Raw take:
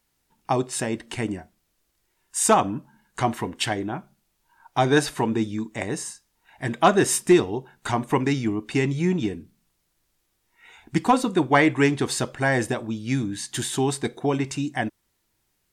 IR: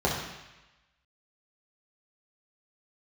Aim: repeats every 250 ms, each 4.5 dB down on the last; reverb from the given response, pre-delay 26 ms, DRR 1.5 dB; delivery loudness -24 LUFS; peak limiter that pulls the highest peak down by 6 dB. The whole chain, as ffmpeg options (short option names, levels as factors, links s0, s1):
-filter_complex "[0:a]alimiter=limit=0.237:level=0:latency=1,aecho=1:1:250|500|750|1000|1250|1500|1750|2000|2250:0.596|0.357|0.214|0.129|0.0772|0.0463|0.0278|0.0167|0.01,asplit=2[s0][s1];[1:a]atrim=start_sample=2205,adelay=26[s2];[s1][s2]afir=irnorm=-1:irlink=0,volume=0.178[s3];[s0][s3]amix=inputs=2:normalize=0,volume=0.668"